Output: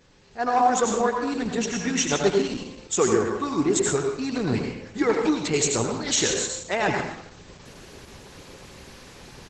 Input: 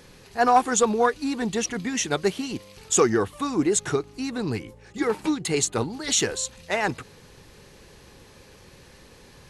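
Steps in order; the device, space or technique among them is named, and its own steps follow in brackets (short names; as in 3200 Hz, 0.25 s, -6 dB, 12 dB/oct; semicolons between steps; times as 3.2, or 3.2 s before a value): speakerphone in a meeting room (reverb RT60 0.75 s, pre-delay 75 ms, DRR 2 dB; speakerphone echo 0.11 s, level -23 dB; AGC gain up to 11.5 dB; gain -7 dB; Opus 12 kbps 48000 Hz)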